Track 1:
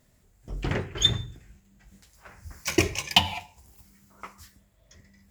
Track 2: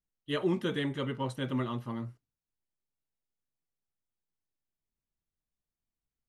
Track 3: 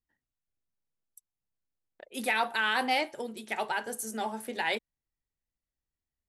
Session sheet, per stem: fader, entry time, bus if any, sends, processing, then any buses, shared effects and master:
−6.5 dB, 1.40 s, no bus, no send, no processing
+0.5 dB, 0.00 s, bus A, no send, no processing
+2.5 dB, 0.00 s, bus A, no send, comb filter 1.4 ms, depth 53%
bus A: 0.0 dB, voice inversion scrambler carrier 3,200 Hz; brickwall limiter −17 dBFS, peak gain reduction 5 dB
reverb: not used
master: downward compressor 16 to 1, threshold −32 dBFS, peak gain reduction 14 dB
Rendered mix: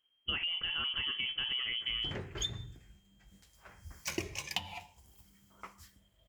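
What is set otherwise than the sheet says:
stem 2 +0.5 dB → +11.5 dB
stem 3: muted

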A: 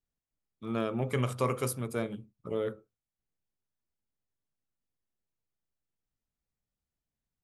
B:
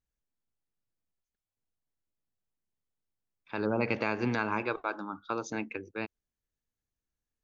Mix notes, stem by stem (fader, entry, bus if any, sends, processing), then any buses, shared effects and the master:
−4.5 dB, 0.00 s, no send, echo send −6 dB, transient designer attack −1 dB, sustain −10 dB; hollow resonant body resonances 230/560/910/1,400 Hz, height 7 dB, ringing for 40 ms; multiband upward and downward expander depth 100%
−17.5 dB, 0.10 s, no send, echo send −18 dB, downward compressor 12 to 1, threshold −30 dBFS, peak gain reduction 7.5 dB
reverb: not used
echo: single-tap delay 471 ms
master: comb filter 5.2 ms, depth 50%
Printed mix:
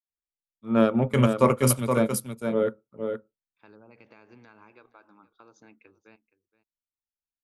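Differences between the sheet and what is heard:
stem A −4.5 dB → +6.0 dB
master: missing comb filter 5.2 ms, depth 50%

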